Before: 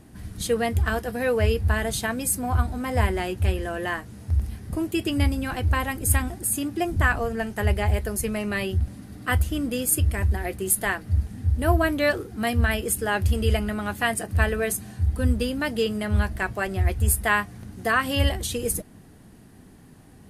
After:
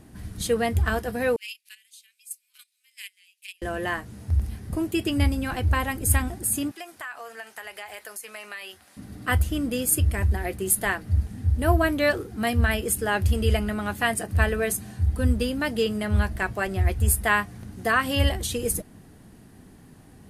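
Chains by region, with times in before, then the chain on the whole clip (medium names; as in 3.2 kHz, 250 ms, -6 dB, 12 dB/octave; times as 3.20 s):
1.36–3.62 s: gate -21 dBFS, range -19 dB + elliptic high-pass 2.4 kHz, stop band 80 dB
6.71–8.97 s: high-pass 960 Hz + compression 4:1, threshold -34 dBFS
whole clip: none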